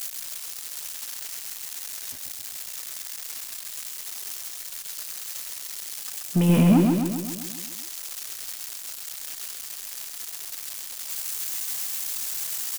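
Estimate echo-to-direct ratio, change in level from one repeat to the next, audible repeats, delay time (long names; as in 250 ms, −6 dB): −2.0 dB, −4.5 dB, 7, 132 ms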